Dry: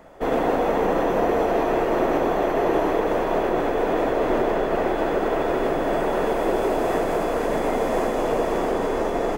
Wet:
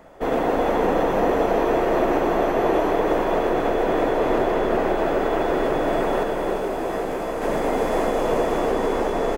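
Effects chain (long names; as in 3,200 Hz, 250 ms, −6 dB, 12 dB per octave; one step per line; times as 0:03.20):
0:06.23–0:07.42: tuned comb filter 65 Hz, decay 0.23 s, harmonics all, mix 70%
on a send: single-tap delay 346 ms −5.5 dB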